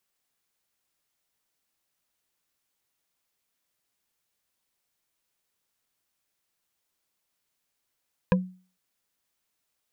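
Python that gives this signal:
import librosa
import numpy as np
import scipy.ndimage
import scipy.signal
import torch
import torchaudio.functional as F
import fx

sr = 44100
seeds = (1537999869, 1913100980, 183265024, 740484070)

y = fx.strike_wood(sr, length_s=0.45, level_db=-15.5, body='bar', hz=184.0, decay_s=0.39, tilt_db=2.5, modes=5)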